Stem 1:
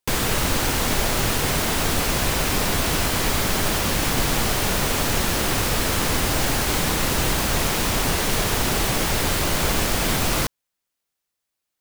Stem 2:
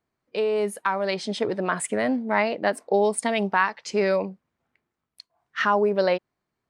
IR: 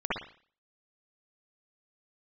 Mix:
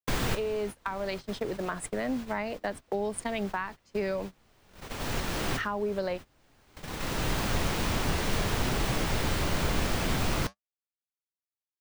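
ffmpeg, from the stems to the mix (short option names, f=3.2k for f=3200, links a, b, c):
-filter_complex "[0:a]equalizer=f=14k:w=0.34:g=-9,flanger=delay=6:depth=7.5:regen=-73:speed=0.56:shape=triangular,volume=0dB[a];[1:a]volume=-6dB,asplit=2[b][c];[c]apad=whole_len=520473[d];[a][d]sidechaincompress=threshold=-48dB:ratio=4:attack=16:release=793[e];[e][b]amix=inputs=2:normalize=0,agate=range=-22dB:threshold=-34dB:ratio=16:detection=peak,acrossover=split=270[f][g];[g]acompressor=threshold=-29dB:ratio=6[h];[f][h]amix=inputs=2:normalize=0"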